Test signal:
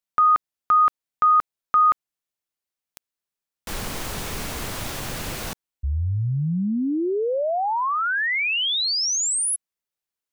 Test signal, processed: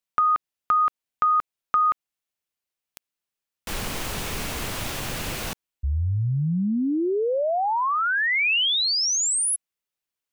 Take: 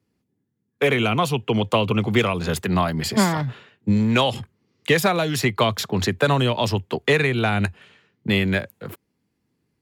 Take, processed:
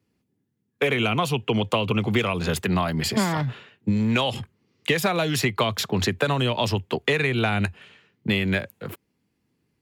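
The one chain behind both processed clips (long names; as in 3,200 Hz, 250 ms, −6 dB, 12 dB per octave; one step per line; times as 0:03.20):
parametric band 2,700 Hz +3 dB 0.66 octaves
downward compressor, threshold −18 dBFS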